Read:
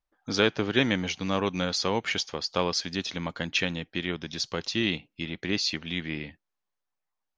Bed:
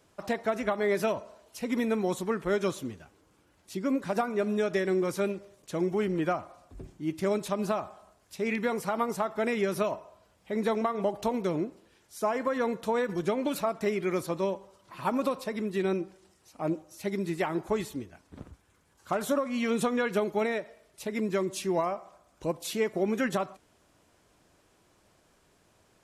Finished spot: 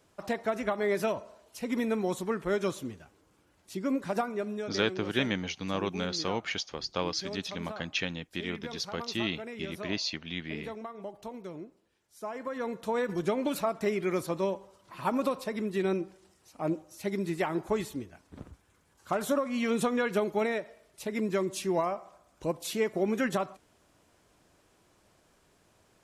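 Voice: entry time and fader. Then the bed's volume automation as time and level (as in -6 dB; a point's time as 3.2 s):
4.40 s, -5.0 dB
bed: 4.19 s -1.5 dB
4.88 s -12.5 dB
12.02 s -12.5 dB
13.09 s -0.5 dB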